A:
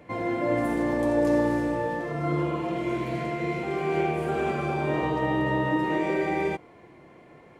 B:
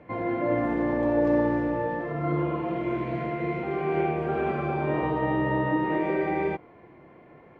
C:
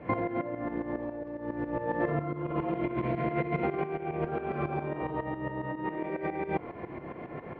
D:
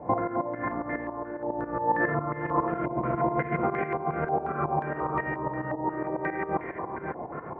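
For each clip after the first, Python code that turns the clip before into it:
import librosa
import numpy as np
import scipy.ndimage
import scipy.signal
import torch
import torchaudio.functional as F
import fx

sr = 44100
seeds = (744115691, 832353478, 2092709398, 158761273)

y1 = scipy.signal.sosfilt(scipy.signal.butter(2, 2300.0, 'lowpass', fs=sr, output='sos'), x)
y2 = fx.over_compress(y1, sr, threshold_db=-35.0, ratio=-1.0)
y2 = fx.tremolo_shape(y2, sr, shape='saw_up', hz=7.3, depth_pct=75)
y2 = fx.air_absorb(y2, sr, metres=150.0)
y2 = F.gain(torch.from_numpy(y2), 6.0).numpy()
y3 = y2 + 10.0 ** (-7.0 / 20.0) * np.pad(y2, (int(543 * sr / 1000.0), 0))[:len(y2)]
y3 = fx.filter_held_lowpass(y3, sr, hz=5.6, low_hz=840.0, high_hz=1900.0)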